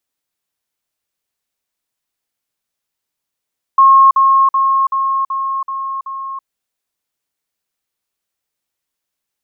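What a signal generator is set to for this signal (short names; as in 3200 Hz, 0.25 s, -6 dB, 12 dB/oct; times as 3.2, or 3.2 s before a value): level ladder 1080 Hz -4 dBFS, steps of -3 dB, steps 7, 0.33 s 0.05 s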